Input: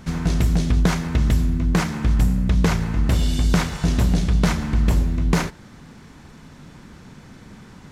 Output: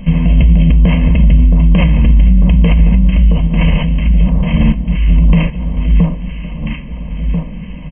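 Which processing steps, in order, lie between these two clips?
parametric band 860 Hz −12.5 dB 1.7 octaves
comb filter 1.9 ms, depth 50%
0:02.74–0:05.09: compressor whose output falls as the input rises −26 dBFS, ratio −1
flanger 1.7 Hz, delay 4.9 ms, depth 4 ms, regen +77%
linear-phase brick-wall low-pass 3,200 Hz
phaser with its sweep stopped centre 390 Hz, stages 6
delay that swaps between a low-pass and a high-pass 670 ms, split 1,200 Hz, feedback 67%, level −6.5 dB
boost into a limiter +23.5 dB
level −1 dB

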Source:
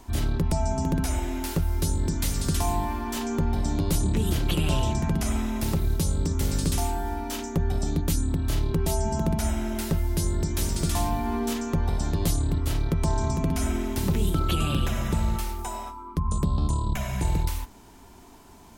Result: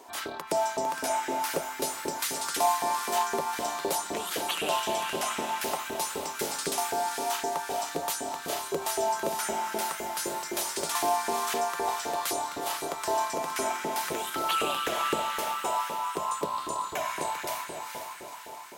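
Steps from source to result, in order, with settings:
feedback delay with all-pass diffusion 463 ms, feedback 55%, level −5 dB
auto-filter high-pass saw up 3.9 Hz 420–1,700 Hz

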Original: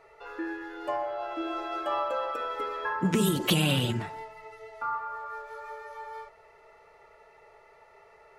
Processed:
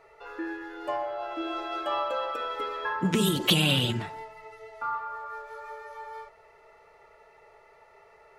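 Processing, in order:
dynamic equaliser 3,500 Hz, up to +6 dB, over −48 dBFS, Q 1.6

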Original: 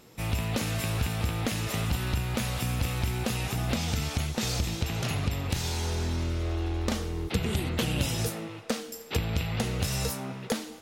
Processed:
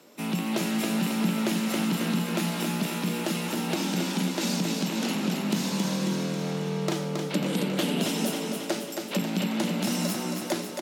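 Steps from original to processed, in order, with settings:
frequency shifter +110 Hz
repeating echo 272 ms, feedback 59%, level −5 dB

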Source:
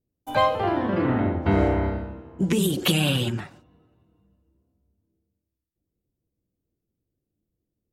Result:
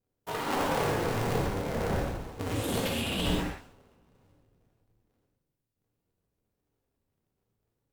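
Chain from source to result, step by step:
sub-harmonics by changed cycles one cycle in 2, inverted
compressor whose output falls as the input rises −26 dBFS, ratio −1
reverb whose tail is shaped and stops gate 160 ms flat, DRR −2.5 dB
level −7.5 dB

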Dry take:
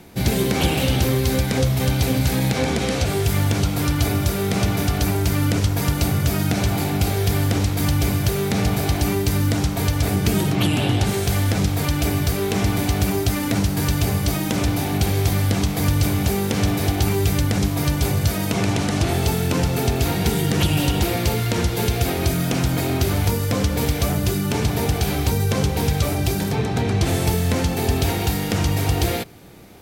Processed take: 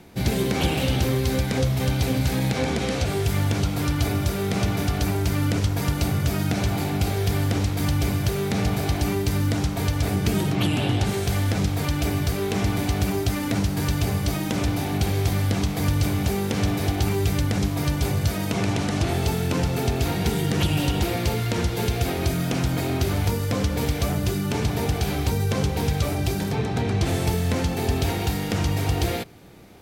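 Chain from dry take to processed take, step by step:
high-shelf EQ 8,300 Hz −5.5 dB
level −3 dB

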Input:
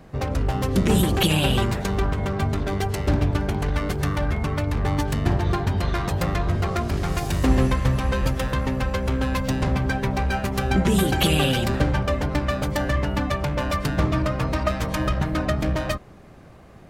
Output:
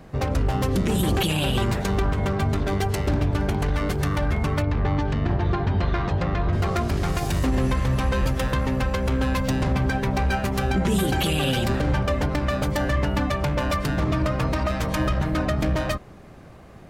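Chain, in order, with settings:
brickwall limiter −15 dBFS, peak gain reduction 9.5 dB
0:04.62–0:06.53: high-frequency loss of the air 170 metres
level +1.5 dB

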